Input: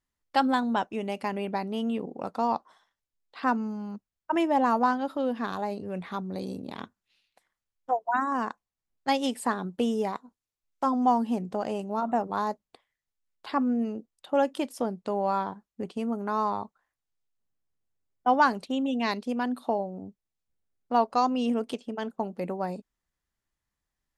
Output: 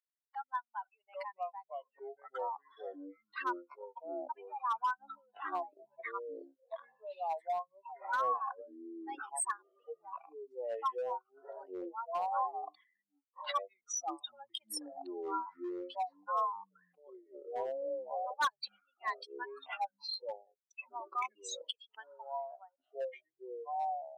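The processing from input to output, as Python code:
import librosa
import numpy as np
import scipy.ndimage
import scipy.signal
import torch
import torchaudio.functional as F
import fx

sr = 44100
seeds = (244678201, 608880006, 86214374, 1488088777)

y = fx.spec_expand(x, sr, power=3.2)
y = scipy.signal.sosfilt(scipy.signal.butter(6, 1300.0, 'highpass', fs=sr, output='sos'), y)
y = np.clip(y, -10.0 ** (-33.0 / 20.0), 10.0 ** (-33.0 / 20.0))
y = fx.echo_pitch(y, sr, ms=646, semitones=-6, count=3, db_per_echo=-3.0)
y = y * librosa.db_to_amplitude(6.5)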